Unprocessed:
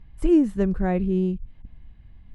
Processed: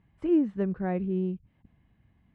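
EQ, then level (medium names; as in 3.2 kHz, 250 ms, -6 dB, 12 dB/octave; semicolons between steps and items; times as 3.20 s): band-pass 120–2800 Hz; -5.5 dB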